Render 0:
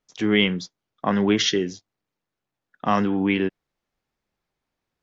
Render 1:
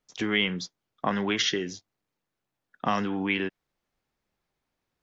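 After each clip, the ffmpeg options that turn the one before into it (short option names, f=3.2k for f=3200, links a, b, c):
-filter_complex "[0:a]acrossover=split=800|2400[a][b][c];[a]acompressor=threshold=-28dB:ratio=4[d];[b]acompressor=threshold=-27dB:ratio=4[e];[c]acompressor=threshold=-27dB:ratio=4[f];[d][e][f]amix=inputs=3:normalize=0"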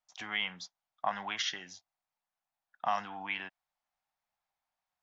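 -af "lowshelf=f=550:t=q:w=3:g=-10.5,volume=-8dB"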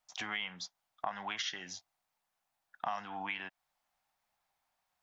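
-af "acompressor=threshold=-44dB:ratio=3,volume=6.5dB"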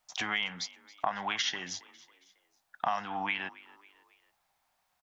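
-filter_complex "[0:a]asplit=4[a][b][c][d];[b]adelay=274,afreqshift=49,volume=-21dB[e];[c]adelay=548,afreqshift=98,volume=-27.6dB[f];[d]adelay=822,afreqshift=147,volume=-34.1dB[g];[a][e][f][g]amix=inputs=4:normalize=0,volume=6dB"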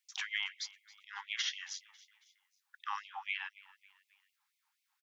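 -af "afftfilt=real='re*gte(b*sr/1024,740*pow(2100/740,0.5+0.5*sin(2*PI*4*pts/sr)))':imag='im*gte(b*sr/1024,740*pow(2100/740,0.5+0.5*sin(2*PI*4*pts/sr)))':win_size=1024:overlap=0.75,volume=-4dB"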